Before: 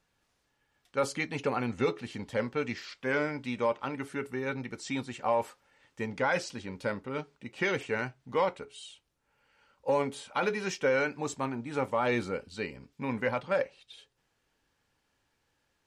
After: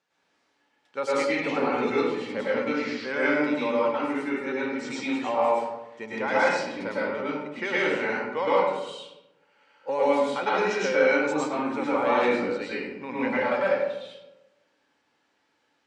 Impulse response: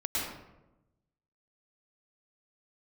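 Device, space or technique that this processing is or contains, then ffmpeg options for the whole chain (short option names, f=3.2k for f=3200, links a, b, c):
supermarket ceiling speaker: -filter_complex "[0:a]highpass=270,lowpass=6.3k[a];[1:a]atrim=start_sample=2205[b];[a][b]afir=irnorm=-1:irlink=0"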